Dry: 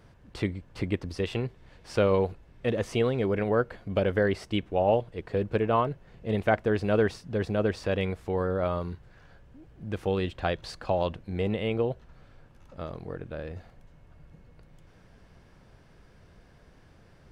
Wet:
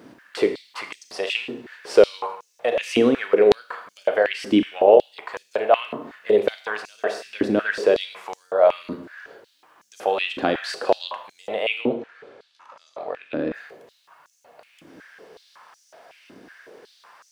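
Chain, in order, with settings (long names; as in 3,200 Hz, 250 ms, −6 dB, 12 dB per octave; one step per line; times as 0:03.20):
in parallel at +2 dB: downward compressor, threshold −33 dBFS, peak gain reduction 14 dB
on the sum: bit-depth reduction 12 bits, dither none
0:11.81–0:13.54: high-frequency loss of the air 76 metres
four-comb reverb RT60 0.69 s, combs from 26 ms, DRR 7 dB
high-pass on a step sequencer 5.4 Hz 270–6,200 Hz
level +1.5 dB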